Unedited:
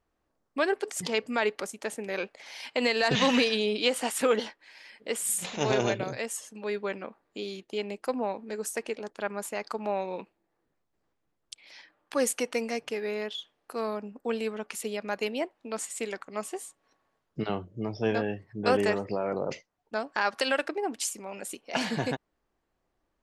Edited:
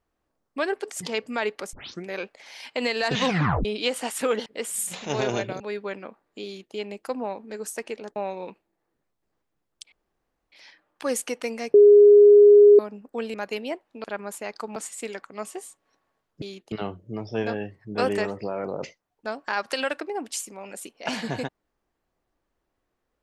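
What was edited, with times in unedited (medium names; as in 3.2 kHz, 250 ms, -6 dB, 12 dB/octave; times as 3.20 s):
1.73 s: tape start 0.33 s
3.25 s: tape stop 0.40 s
4.46–4.97 s: delete
6.11–6.59 s: delete
7.44–7.74 s: copy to 17.40 s
9.15–9.87 s: move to 15.74 s
11.63 s: insert room tone 0.60 s
12.85–13.90 s: bleep 412 Hz -8.5 dBFS
14.45–15.04 s: delete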